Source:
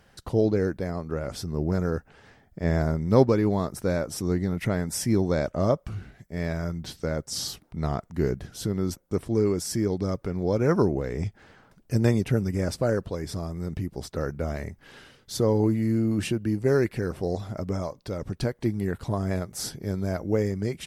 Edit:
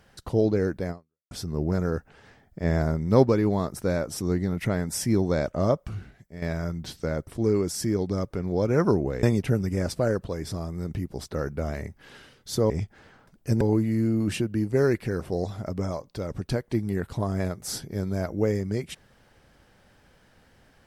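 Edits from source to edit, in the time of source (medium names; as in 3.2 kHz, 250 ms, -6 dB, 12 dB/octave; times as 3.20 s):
0.91–1.31 s: fade out exponential
5.95–6.42 s: fade out, to -10 dB
7.27–9.18 s: delete
11.14–12.05 s: move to 15.52 s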